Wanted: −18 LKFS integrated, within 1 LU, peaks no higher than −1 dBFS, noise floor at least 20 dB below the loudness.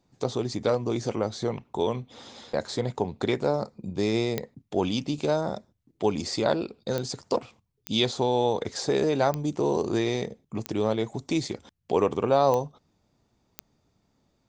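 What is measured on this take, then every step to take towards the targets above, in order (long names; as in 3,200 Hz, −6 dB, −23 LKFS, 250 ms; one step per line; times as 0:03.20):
number of clicks 7; integrated loudness −27.5 LKFS; sample peak −9.0 dBFS; target loudness −18.0 LKFS
→ click removal
level +9.5 dB
brickwall limiter −1 dBFS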